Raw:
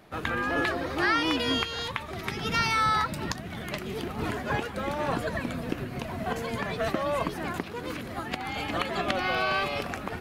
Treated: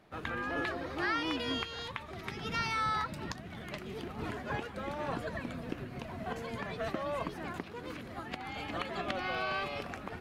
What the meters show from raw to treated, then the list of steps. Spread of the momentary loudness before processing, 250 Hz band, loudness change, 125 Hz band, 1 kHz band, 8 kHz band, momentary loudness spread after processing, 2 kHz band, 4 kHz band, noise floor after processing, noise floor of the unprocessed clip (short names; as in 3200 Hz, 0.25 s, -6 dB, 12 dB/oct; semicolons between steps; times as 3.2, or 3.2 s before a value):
10 LU, -7.5 dB, -8.0 dB, -7.5 dB, -7.5 dB, -10.5 dB, 10 LU, -8.0 dB, -8.5 dB, -47 dBFS, -39 dBFS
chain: high shelf 8600 Hz -8.5 dB; gain -7.5 dB